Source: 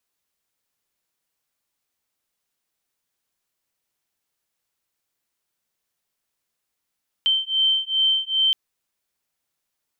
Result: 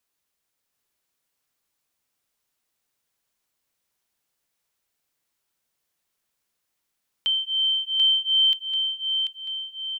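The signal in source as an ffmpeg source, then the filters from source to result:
-f lavfi -i "aevalsrc='0.0891*(sin(2*PI*3110*t)+sin(2*PI*3112.5*t))':d=1.27:s=44100"
-filter_complex "[0:a]acrossover=split=2900[a][b];[b]acompressor=threshold=-30dB:ratio=4:attack=1:release=60[c];[a][c]amix=inputs=2:normalize=0,aecho=1:1:738|1476|2214|2952|3690|4428:0.562|0.27|0.13|0.0622|0.0299|0.0143"

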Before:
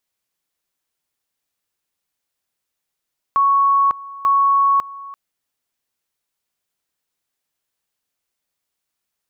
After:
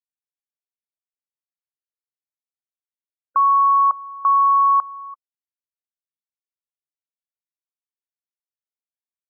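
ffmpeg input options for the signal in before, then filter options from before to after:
-f lavfi -i "aevalsrc='pow(10,(-11.5-19.5*gte(mod(t,0.89),0.55))/20)*sin(2*PI*1110*t)':d=1.78:s=44100"
-af "afftfilt=real='re*gte(hypot(re,im),0.0562)':imag='im*gte(hypot(re,im),0.0562)':win_size=1024:overlap=0.75,bandreject=f=590:w=12"

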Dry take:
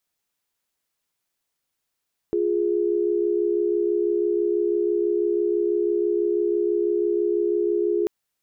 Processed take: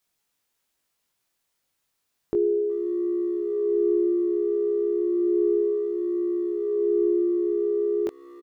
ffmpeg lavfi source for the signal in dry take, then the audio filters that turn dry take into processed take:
-f lavfi -i "aevalsrc='0.0794*(sin(2*PI*349.23*t)+sin(2*PI*415.3*t))':d=5.74:s=44100"
-filter_complex "[0:a]asplit=2[a][b];[b]adelay=370,highpass=300,lowpass=3.4k,asoftclip=type=hard:threshold=-25dB,volume=-20dB[c];[a][c]amix=inputs=2:normalize=0,flanger=delay=18:depth=3.2:speed=0.32,asplit=2[d][e];[e]acompressor=threshold=-35dB:ratio=6,volume=1dB[f];[d][f]amix=inputs=2:normalize=0"

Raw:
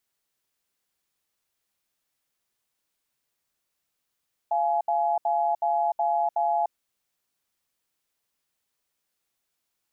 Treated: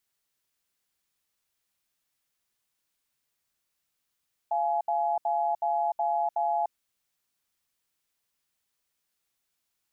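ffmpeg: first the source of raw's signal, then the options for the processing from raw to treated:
-f lavfi -i "aevalsrc='0.0631*(sin(2*PI*690*t)+sin(2*PI*842*t))*clip(min(mod(t,0.37),0.3-mod(t,0.37))/0.005,0,1)':d=2.17:s=44100"
-af "equalizer=f=500:w=0.59:g=-3.5"

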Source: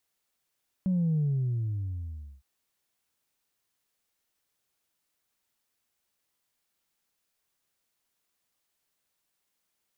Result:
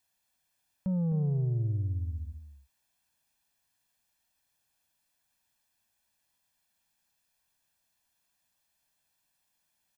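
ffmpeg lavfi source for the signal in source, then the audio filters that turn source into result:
-f lavfi -i "aevalsrc='0.0668*clip((1.56-t)/1.25,0,1)*tanh(1*sin(2*PI*190*1.56/log(65/190)*(exp(log(65/190)*t/1.56)-1)))/tanh(1)':d=1.56:s=44100"
-af "aecho=1:1:1.2:0.59,asoftclip=type=tanh:threshold=-26dB,aecho=1:1:258:0.299"

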